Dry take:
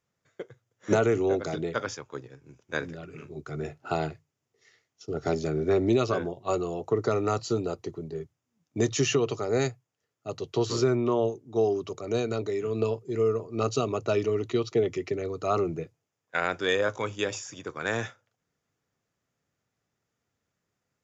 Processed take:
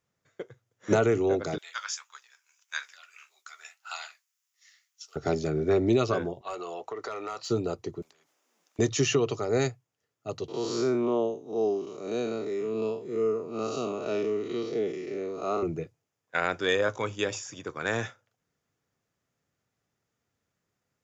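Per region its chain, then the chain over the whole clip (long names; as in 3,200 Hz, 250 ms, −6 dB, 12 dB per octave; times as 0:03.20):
0:01.58–0:05.16: high-pass filter 1,000 Hz 24 dB per octave + spectral tilt +4 dB per octave + flanger 1.7 Hz, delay 6.6 ms, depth 6.8 ms, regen −56%
0:06.41–0:07.50: high-pass filter 1,000 Hz 6 dB per octave + mid-hump overdrive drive 12 dB, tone 2,500 Hz, clips at −18.5 dBFS + downward compressor 4 to 1, threshold −32 dBFS
0:08.02–0:08.79: high-pass filter 350 Hz 24 dB per octave + downward compressor 10 to 1, threshold −48 dBFS + every bin compressed towards the loudest bin 4 to 1
0:10.48–0:15.63: spectrum smeared in time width 133 ms + high-pass filter 160 Hz 24 dB per octave
whole clip: no processing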